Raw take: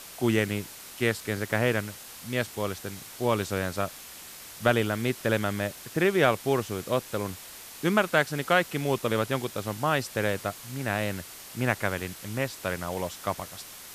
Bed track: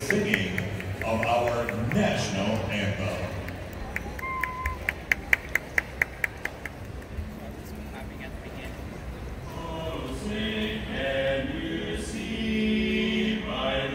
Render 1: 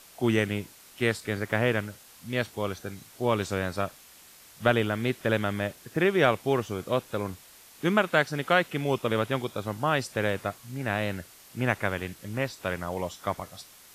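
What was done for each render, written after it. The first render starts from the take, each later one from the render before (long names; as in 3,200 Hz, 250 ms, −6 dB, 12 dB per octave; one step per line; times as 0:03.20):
noise reduction from a noise print 8 dB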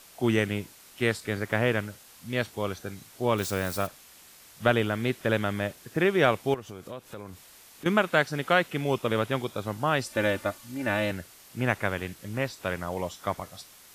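0:03.38–0:03.87: spike at every zero crossing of −30.5 dBFS
0:06.54–0:07.86: downward compressor 3 to 1, threshold −39 dBFS
0:10.06–0:11.11: comb filter 3.4 ms, depth 78%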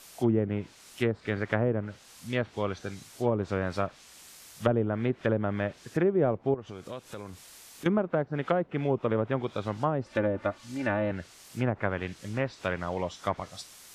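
treble cut that deepens with the level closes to 580 Hz, closed at −20.5 dBFS
dynamic equaliser 6,700 Hz, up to +4 dB, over −57 dBFS, Q 0.71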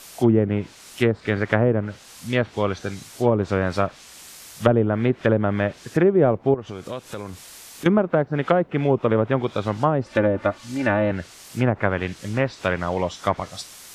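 level +8 dB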